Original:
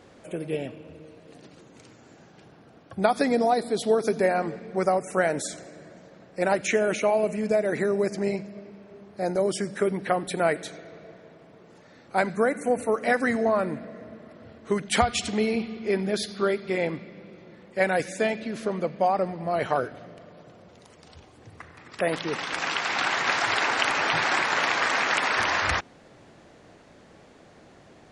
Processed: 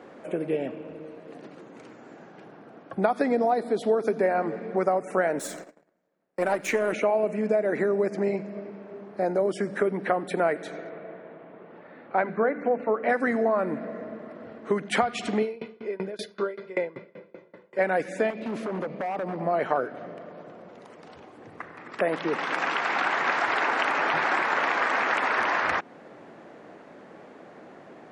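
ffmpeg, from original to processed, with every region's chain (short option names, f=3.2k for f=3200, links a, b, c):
-filter_complex "[0:a]asettb=1/sr,asplit=3[a][b][c];[a]atrim=end=5.394[d];[b]atrim=start=5.39:end=6.93,asetpts=PTS-STARTPTS,afade=t=in:d=0.004:c=qsin,afade=t=out:st=1.536:d=0.004:c=qsin,aeval=exprs='if(lt(val(0),0),0.447*val(0),val(0))':c=same,aemphasis=mode=production:type=50kf,agate=range=-30dB:threshold=-45dB:ratio=16:release=100:detection=peak[e];[c]atrim=start=6.926[f];[d][e]acrossfade=d=0.004:c1=hsin:c2=qsin[g];[g][f]acrossfade=d=0.004:c1=qsin:c2=hsin,asettb=1/sr,asplit=3[h][i][j];[h]atrim=end=10.894[k];[i]atrim=start=10.89:end=13.09,asetpts=PTS-STARTPTS,afade=t=in:d=0.004:c=qsin,afade=t=out:st=2.196:d=0.004:c=qsin,lowpass=f=3.4k:w=0.5412,lowpass=f=3.4k:w=1.3066,bandreject=f=50:t=h:w=6,bandreject=f=100:t=h:w=6,bandreject=f=150:t=h:w=6,bandreject=f=200:t=h:w=6,bandreject=f=250:t=h:w=6,bandreject=f=300:t=h:w=6,bandreject=f=350:t=h:w=6,bandreject=f=400:t=h:w=6,bandreject=f=450:t=h:w=6[l];[j]atrim=start=13.086[m];[k][l]acrossfade=d=0.004:c1=hsin:c2=qsin[n];[n][m]acrossfade=d=0.004:c1=qsin:c2=hsin,asettb=1/sr,asplit=3[o][p][q];[o]atrim=end=15.424[r];[p]atrim=start=15.42:end=17.79,asetpts=PTS-STARTPTS,afade=t=in:d=0.004:c=qsin,afade=t=out:st=2.366:d=0.004:c=qsin,aecho=1:1:2:0.58,atrim=end_sample=104517,aeval=exprs='val(0)*pow(10,-27*if(lt(mod(5.2*n/s,1),2*abs(5.2)/1000),1-mod(5.2*n/s,1)/(2*abs(5.2)/1000),(mod(5.2*n/s,1)-2*abs(5.2)/1000)/(1-2*abs(5.2)/1000))/20)':c=same[s];[q]atrim=start=17.786[t];[r][s]acrossfade=d=0.004:c1=hsin:c2=qsin[u];[u][t]acrossfade=d=0.004:c1=qsin:c2=hsin,asettb=1/sr,asplit=3[v][w][x];[v]atrim=end=18.304[y];[w]atrim=start=18.3:end=19.41,asetpts=PTS-STARTPTS,afade=t=in:d=0.004:c=qsin,afade=t=out:st=1.106:d=0.004:c=qsin,equalizer=f=1.6k:t=o:w=0.52:g=-7,acompressor=threshold=-28dB:ratio=10:attack=3.2:release=140:knee=1:detection=peak,aeval=exprs='0.0335*(abs(mod(val(0)/0.0335+3,4)-2)-1)':c=same[z];[x]atrim=start=19.406[aa];[y][z]acrossfade=d=0.004:c1=hsin:c2=qsin[ab];[ab][aa]acrossfade=d=0.004:c1=qsin:c2=hsin,acrossover=split=170 2300:gain=0.0708 1 0.2[ac][ad][ae];[ac][ad][ae]amix=inputs=3:normalize=0,acompressor=threshold=-32dB:ratio=2,volume=6.5dB"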